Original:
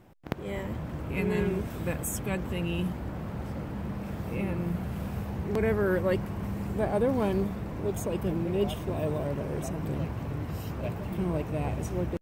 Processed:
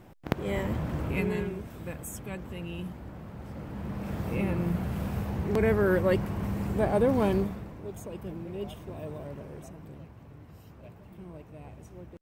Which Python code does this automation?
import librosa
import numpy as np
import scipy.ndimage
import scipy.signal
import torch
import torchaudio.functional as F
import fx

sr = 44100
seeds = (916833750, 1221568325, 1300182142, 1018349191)

y = fx.gain(x, sr, db=fx.line((1.05, 4.0), (1.55, -7.0), (3.37, -7.0), (4.16, 2.0), (7.34, 2.0), (7.79, -9.0), (9.37, -9.0), (10.08, -15.5)))